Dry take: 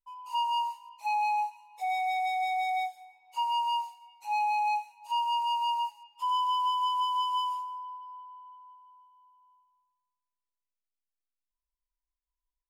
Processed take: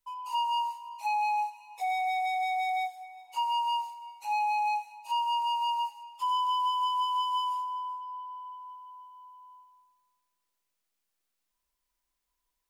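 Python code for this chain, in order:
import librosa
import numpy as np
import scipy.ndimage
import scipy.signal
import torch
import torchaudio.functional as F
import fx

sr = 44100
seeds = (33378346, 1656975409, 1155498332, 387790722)

p1 = x + fx.echo_single(x, sr, ms=385, db=-23.0, dry=0)
y = fx.band_squash(p1, sr, depth_pct=40)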